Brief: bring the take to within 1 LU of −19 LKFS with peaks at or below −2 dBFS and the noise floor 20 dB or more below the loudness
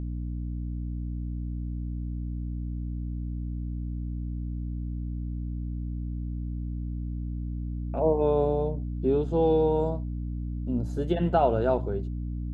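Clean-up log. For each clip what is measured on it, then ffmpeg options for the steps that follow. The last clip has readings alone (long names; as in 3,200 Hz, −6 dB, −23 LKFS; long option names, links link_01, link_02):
mains hum 60 Hz; hum harmonics up to 300 Hz; level of the hum −30 dBFS; integrated loudness −30.0 LKFS; sample peak −11.5 dBFS; target loudness −19.0 LKFS
→ -af "bandreject=frequency=60:width_type=h:width=6,bandreject=frequency=120:width_type=h:width=6,bandreject=frequency=180:width_type=h:width=6,bandreject=frequency=240:width_type=h:width=6,bandreject=frequency=300:width_type=h:width=6"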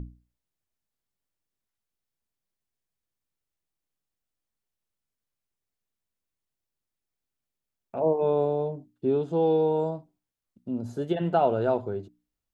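mains hum none found; integrated loudness −26.5 LKFS; sample peak −12.5 dBFS; target loudness −19.0 LKFS
→ -af "volume=7.5dB"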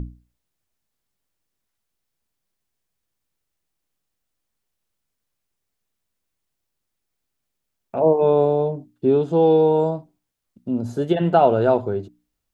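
integrated loudness −19.0 LKFS; sample peak −5.0 dBFS; background noise floor −79 dBFS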